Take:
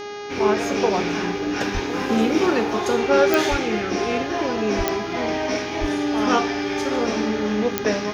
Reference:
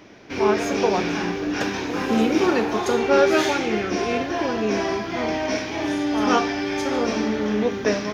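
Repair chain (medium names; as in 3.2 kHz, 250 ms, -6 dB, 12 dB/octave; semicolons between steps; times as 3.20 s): de-click; de-hum 411.2 Hz, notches 16; de-plosive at 1.73/3.50/4.77/5.80 s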